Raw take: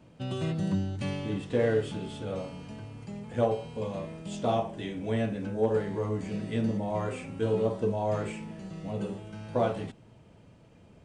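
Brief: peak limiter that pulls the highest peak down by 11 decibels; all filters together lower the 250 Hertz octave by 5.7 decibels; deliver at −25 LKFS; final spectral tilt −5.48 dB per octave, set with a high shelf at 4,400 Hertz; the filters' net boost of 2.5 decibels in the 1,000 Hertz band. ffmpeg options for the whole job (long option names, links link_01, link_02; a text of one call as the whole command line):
ffmpeg -i in.wav -af "equalizer=frequency=250:width_type=o:gain=-8,equalizer=frequency=1000:width_type=o:gain=4,highshelf=frequency=4400:gain=5.5,volume=11dB,alimiter=limit=-13dB:level=0:latency=1" out.wav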